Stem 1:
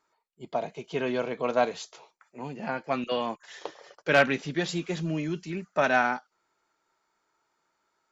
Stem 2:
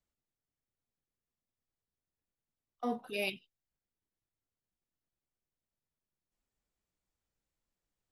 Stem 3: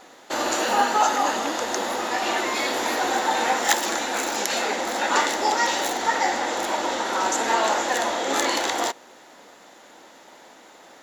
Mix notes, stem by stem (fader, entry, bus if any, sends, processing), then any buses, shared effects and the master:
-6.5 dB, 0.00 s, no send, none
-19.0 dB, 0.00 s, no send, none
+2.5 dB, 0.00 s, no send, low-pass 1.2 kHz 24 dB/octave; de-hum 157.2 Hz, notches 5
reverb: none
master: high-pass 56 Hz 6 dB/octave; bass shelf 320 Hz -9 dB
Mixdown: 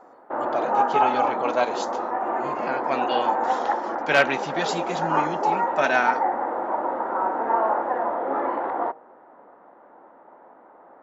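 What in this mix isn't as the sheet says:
stem 1 -6.5 dB -> +3.5 dB; stem 2 -19.0 dB -> -30.0 dB; master: missing high-pass 56 Hz 6 dB/octave

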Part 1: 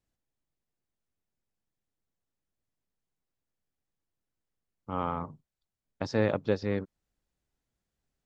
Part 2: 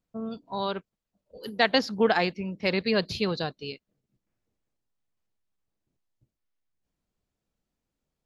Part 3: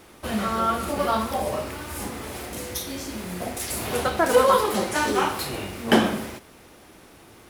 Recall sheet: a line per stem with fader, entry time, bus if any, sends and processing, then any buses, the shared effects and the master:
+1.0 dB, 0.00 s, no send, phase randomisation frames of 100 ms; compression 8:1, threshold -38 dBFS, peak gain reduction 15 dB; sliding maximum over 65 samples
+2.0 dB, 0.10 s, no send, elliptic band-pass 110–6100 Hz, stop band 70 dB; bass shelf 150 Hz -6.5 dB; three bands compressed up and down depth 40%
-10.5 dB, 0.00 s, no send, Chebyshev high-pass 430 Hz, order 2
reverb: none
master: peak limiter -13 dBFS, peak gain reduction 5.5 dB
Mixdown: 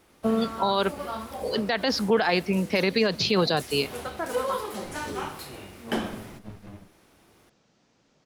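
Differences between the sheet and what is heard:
stem 2 +2.0 dB -> +10.0 dB; stem 3: missing Chebyshev high-pass 430 Hz, order 2

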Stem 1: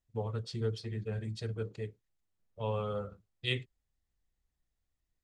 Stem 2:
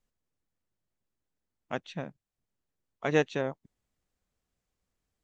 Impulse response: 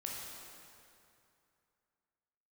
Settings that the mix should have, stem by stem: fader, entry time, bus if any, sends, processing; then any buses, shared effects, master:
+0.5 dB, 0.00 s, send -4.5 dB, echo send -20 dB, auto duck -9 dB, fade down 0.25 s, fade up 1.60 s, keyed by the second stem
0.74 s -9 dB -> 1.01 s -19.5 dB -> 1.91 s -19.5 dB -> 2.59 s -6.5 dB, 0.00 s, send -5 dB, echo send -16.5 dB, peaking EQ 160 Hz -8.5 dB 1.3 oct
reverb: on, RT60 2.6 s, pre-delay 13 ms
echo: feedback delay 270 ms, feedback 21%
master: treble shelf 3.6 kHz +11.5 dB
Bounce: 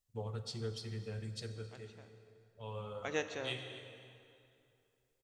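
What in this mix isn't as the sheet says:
stem 1 +0.5 dB -> -9.0 dB; stem 2 -9.0 dB -> -16.0 dB

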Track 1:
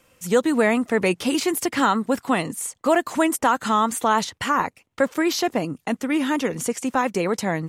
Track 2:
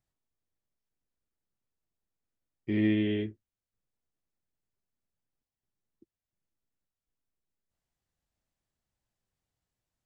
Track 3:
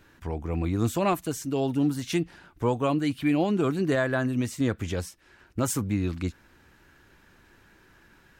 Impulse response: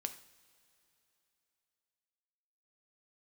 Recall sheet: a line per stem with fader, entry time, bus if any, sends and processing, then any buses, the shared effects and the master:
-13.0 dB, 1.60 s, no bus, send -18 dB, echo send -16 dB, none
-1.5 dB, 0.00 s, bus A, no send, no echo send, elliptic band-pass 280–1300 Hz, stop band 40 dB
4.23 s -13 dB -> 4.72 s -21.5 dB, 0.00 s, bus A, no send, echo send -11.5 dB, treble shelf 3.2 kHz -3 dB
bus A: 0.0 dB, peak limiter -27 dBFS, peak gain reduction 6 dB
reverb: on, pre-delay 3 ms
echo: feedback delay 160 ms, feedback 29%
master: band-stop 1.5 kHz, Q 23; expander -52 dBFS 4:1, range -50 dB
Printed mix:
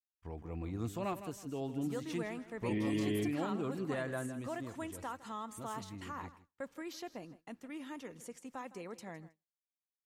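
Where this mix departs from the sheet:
stem 1 -13.0 dB -> -24.0 dB; stem 2: missing elliptic band-pass 280–1300 Hz, stop band 40 dB

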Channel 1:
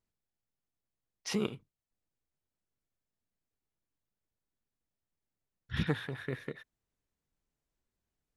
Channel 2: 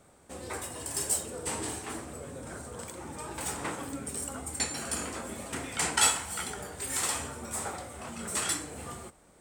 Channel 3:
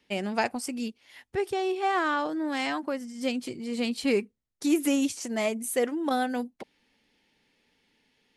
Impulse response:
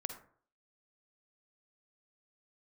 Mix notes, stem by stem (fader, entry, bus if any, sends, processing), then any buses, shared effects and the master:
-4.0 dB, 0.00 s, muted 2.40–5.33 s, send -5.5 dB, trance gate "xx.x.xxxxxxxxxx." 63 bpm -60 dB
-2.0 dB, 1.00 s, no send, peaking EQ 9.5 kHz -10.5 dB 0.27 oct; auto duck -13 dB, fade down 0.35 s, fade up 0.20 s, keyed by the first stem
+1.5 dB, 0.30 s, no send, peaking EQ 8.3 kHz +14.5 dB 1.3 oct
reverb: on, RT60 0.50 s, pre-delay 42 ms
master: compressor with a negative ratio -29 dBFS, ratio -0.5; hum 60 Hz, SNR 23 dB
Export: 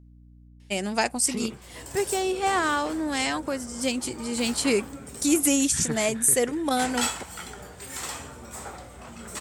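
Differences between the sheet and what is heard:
stem 3: entry 0.30 s -> 0.60 s; master: missing compressor with a negative ratio -29 dBFS, ratio -0.5

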